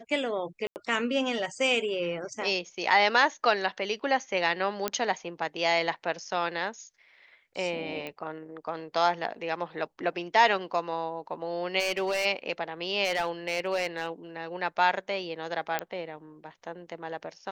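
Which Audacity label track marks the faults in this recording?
0.670000	0.760000	dropout 89 ms
4.880000	4.880000	pop -11 dBFS
8.070000	8.070000	pop -23 dBFS
11.790000	12.260000	clipped -24 dBFS
13.040000	14.070000	clipped -22.5 dBFS
15.790000	15.790000	pop -13 dBFS

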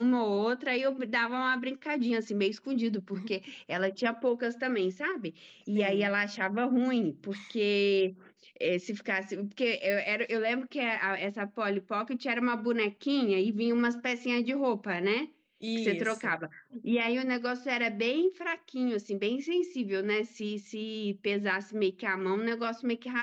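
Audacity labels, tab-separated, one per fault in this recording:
9.900000	9.900000	pop -18 dBFS

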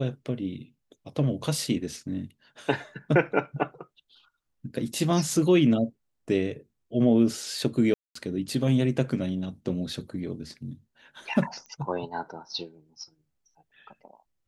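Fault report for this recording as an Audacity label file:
7.940000	8.150000	dropout 214 ms
11.660000	11.660000	pop -31 dBFS

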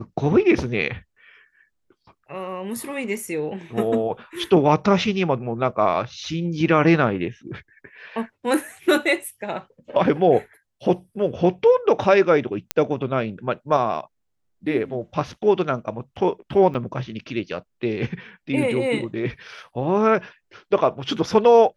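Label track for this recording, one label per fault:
12.710000	12.710000	pop -4 dBFS
16.740000	16.750000	dropout 7 ms

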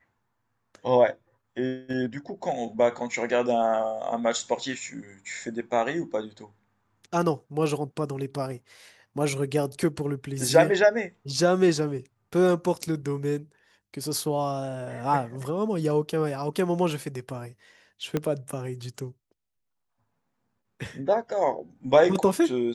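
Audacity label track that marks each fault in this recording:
18.170000	18.170000	pop -13 dBFS

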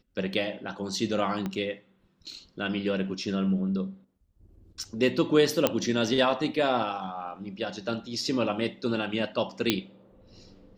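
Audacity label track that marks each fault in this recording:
1.460000	1.460000	pop -19 dBFS
5.670000	5.670000	pop -7 dBFS
9.700000	9.700000	pop -7 dBFS

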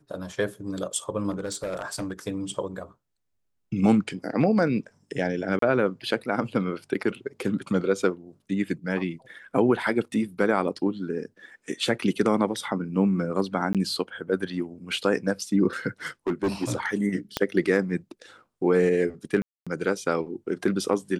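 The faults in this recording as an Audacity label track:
1.300000	2.130000	clipped -25.5 dBFS
5.590000	5.620000	dropout 33 ms
13.730000	13.750000	dropout 17 ms
16.270000	16.710000	clipped -20.5 dBFS
17.370000	17.370000	pop -9 dBFS
19.420000	19.670000	dropout 246 ms

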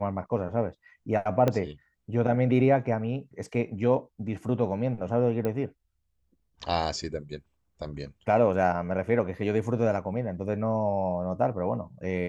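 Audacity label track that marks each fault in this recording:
1.480000	1.480000	pop -12 dBFS
5.450000	5.450000	pop -18 dBFS

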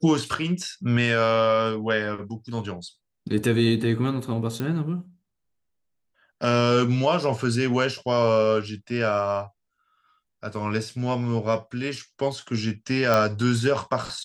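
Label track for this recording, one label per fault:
4.600000	4.600000	pop
13.140000	13.140000	pop -8 dBFS

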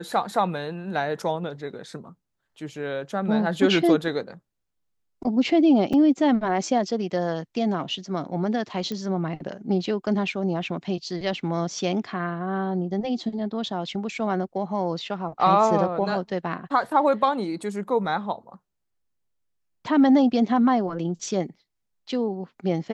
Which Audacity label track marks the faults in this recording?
5.930000	5.930000	dropout 4.8 ms
8.920000	8.920000	pop -18 dBFS

